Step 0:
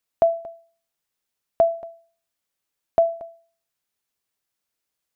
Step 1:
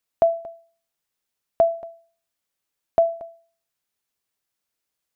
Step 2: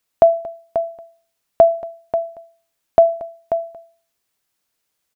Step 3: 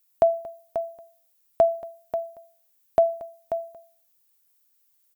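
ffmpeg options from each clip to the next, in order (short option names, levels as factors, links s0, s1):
-af anull
-af "aecho=1:1:537:0.335,volume=2.24"
-af "aemphasis=mode=production:type=50fm,volume=0.422"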